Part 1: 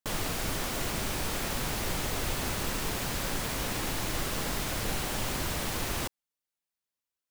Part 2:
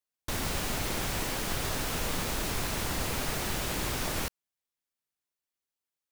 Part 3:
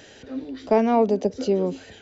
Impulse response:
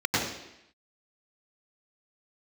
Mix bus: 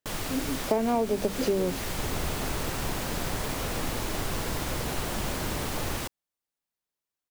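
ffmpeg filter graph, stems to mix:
-filter_complex "[0:a]volume=-1dB[link_01];[1:a]lowpass=1200,adelay=1700,volume=0dB[link_02];[2:a]bandreject=frequency=50:width_type=h:width=6,bandreject=frequency=100:width_type=h:width=6,bandreject=frequency=150:width_type=h:width=6,bandreject=frequency=200:width_type=h:width=6,agate=range=-46dB:threshold=-39dB:ratio=16:detection=peak,volume=0.5dB[link_03];[link_01][link_02][link_03]amix=inputs=3:normalize=0,acompressor=threshold=-22dB:ratio=6"

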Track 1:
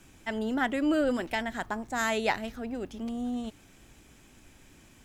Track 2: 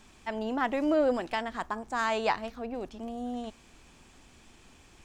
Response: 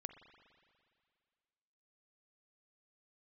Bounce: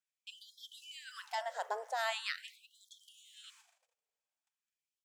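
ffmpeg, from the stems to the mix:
-filter_complex "[0:a]tiltshelf=frequency=1100:gain=7.5,volume=-4.5dB,asplit=2[link_01][link_02];[link_02]volume=-4.5dB[link_03];[1:a]highshelf=frequency=3200:gain=11.5,volume=-1,adelay=0.5,volume=-10.5dB[link_04];[2:a]atrim=start_sample=2205[link_05];[link_03][link_05]afir=irnorm=-1:irlink=0[link_06];[link_01][link_04][link_06]amix=inputs=3:normalize=0,agate=range=-34dB:threshold=-44dB:ratio=16:detection=peak,lowshelf=frequency=490:gain=-3.5,afftfilt=real='re*gte(b*sr/1024,410*pow(3200/410,0.5+0.5*sin(2*PI*0.43*pts/sr)))':imag='im*gte(b*sr/1024,410*pow(3200/410,0.5+0.5*sin(2*PI*0.43*pts/sr)))':win_size=1024:overlap=0.75"

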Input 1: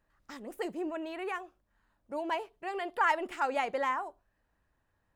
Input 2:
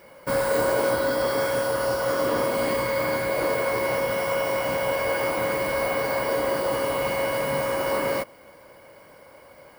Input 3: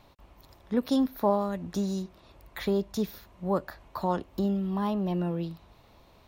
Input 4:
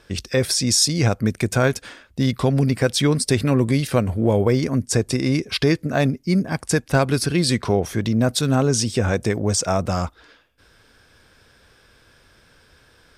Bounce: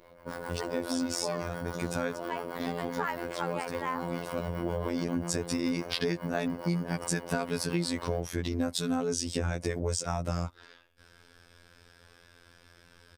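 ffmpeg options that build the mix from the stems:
ffmpeg -i stem1.wav -i stem2.wav -i stem3.wav -i stem4.wav -filter_complex "[0:a]volume=0dB,asplit=2[link_01][link_02];[1:a]alimiter=limit=-18.5dB:level=0:latency=1:release=392,highshelf=frequency=2100:gain=-11.5,acrossover=split=610[link_03][link_04];[link_03]aeval=exprs='val(0)*(1-0.7/2+0.7/2*cos(2*PI*7.3*n/s))':channel_layout=same[link_05];[link_04]aeval=exprs='val(0)*(1-0.7/2-0.7/2*cos(2*PI*7.3*n/s))':channel_layout=same[link_06];[link_05][link_06]amix=inputs=2:normalize=0,volume=0.5dB[link_07];[2:a]volume=-3.5dB[link_08];[3:a]adelay=400,volume=-0.5dB[link_09];[link_02]apad=whole_len=598514[link_10];[link_09][link_10]sidechaincompress=threshold=-44dB:ratio=8:attack=16:release=1090[link_11];[link_01][link_07][link_08][link_11]amix=inputs=4:normalize=0,afftfilt=real='hypot(re,im)*cos(PI*b)':imag='0':win_size=2048:overlap=0.75,acompressor=threshold=-26dB:ratio=6" out.wav

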